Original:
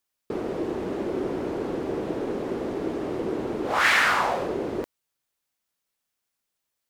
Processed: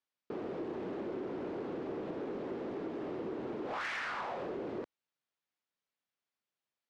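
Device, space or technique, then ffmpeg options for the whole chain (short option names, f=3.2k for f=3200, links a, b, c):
AM radio: -af "highpass=110,lowpass=4.1k,acompressor=threshold=-26dB:ratio=6,asoftclip=type=tanh:threshold=-24.5dB,volume=-7dB"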